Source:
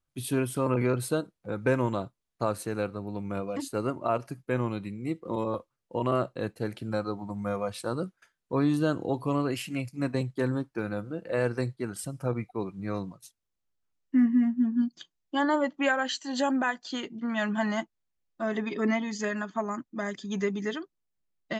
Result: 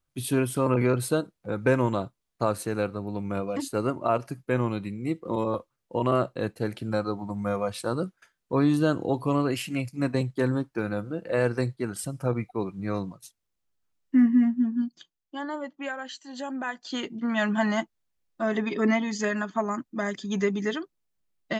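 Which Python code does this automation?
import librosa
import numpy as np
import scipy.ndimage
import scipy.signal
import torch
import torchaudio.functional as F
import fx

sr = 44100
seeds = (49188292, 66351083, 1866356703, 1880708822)

y = fx.gain(x, sr, db=fx.line((14.45, 3.0), (15.39, -8.0), (16.48, -8.0), (17.02, 3.5)))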